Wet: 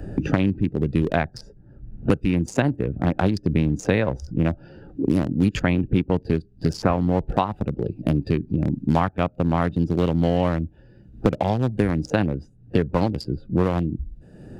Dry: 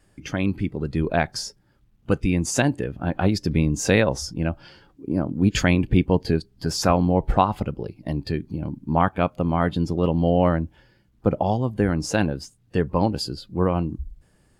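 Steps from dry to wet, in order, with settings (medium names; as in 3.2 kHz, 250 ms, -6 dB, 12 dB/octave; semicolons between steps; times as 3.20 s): local Wiener filter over 41 samples; three bands compressed up and down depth 100%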